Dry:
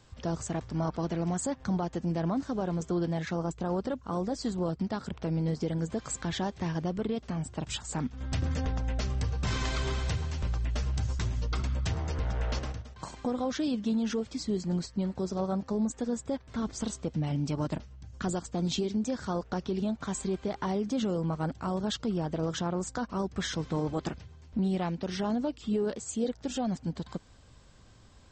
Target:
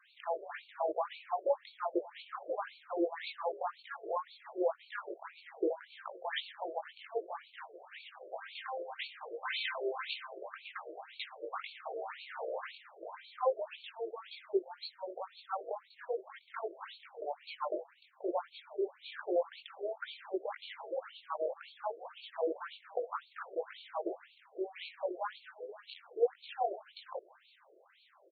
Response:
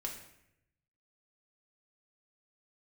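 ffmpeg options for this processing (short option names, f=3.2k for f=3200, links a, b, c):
-filter_complex "[0:a]flanger=delay=19:depth=2.4:speed=1.6,asplit=7[a][b][c][d][e][f][g];[b]adelay=161,afreqshift=-100,volume=-17dB[h];[c]adelay=322,afreqshift=-200,volume=-20.9dB[i];[d]adelay=483,afreqshift=-300,volume=-24.8dB[j];[e]adelay=644,afreqshift=-400,volume=-28.6dB[k];[f]adelay=805,afreqshift=-500,volume=-32.5dB[l];[g]adelay=966,afreqshift=-600,volume=-36.4dB[m];[a][h][i][j][k][l][m]amix=inputs=7:normalize=0,afftfilt=real='re*between(b*sr/1024,470*pow(3200/470,0.5+0.5*sin(2*PI*1.9*pts/sr))/1.41,470*pow(3200/470,0.5+0.5*sin(2*PI*1.9*pts/sr))*1.41)':imag='im*between(b*sr/1024,470*pow(3200/470,0.5+0.5*sin(2*PI*1.9*pts/sr))/1.41,470*pow(3200/470,0.5+0.5*sin(2*PI*1.9*pts/sr))*1.41)':win_size=1024:overlap=0.75,volume=8dB"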